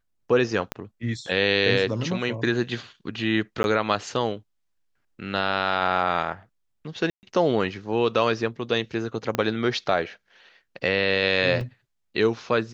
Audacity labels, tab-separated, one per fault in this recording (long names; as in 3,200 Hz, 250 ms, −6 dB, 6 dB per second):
0.720000	0.720000	click −12 dBFS
3.630000	3.640000	drop-out 11 ms
7.100000	7.230000	drop-out 129 ms
9.350000	9.350000	click −10 dBFS
11.610000	11.610000	drop-out 2.1 ms